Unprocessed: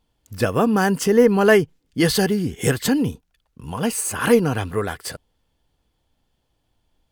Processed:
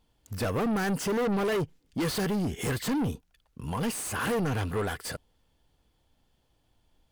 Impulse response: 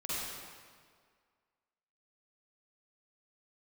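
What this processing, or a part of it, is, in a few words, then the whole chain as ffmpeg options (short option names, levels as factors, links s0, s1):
saturation between pre-emphasis and de-emphasis: -af "highshelf=f=3300:g=10,asoftclip=type=tanh:threshold=0.0562,highshelf=f=3300:g=-10"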